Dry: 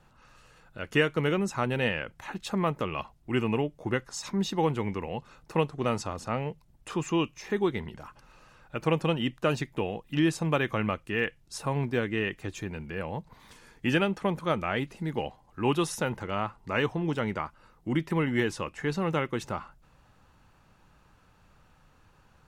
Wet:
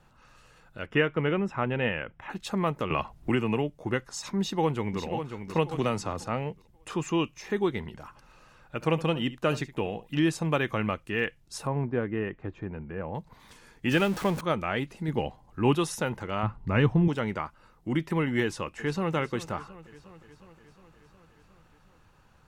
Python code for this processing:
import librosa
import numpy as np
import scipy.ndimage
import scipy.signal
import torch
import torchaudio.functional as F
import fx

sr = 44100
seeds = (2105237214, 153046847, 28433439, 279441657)

y = fx.savgol(x, sr, points=25, at=(0.86, 2.3))
y = fx.band_squash(y, sr, depth_pct=100, at=(2.9, 3.7))
y = fx.echo_throw(y, sr, start_s=4.39, length_s=0.66, ms=540, feedback_pct=30, wet_db=-8.0)
y = fx.band_squash(y, sr, depth_pct=70, at=(5.71, 6.24))
y = fx.echo_single(y, sr, ms=70, db=-17.0, at=(8.03, 10.2))
y = fx.lowpass(y, sr, hz=1400.0, slope=12, at=(11.67, 13.15))
y = fx.zero_step(y, sr, step_db=-33.0, at=(13.91, 14.41))
y = fx.low_shelf(y, sr, hz=340.0, db=6.0, at=(15.08, 15.75))
y = fx.bass_treble(y, sr, bass_db=13, treble_db=-8, at=(16.43, 17.08))
y = fx.echo_throw(y, sr, start_s=18.43, length_s=0.71, ms=360, feedback_pct=70, wet_db=-16.0)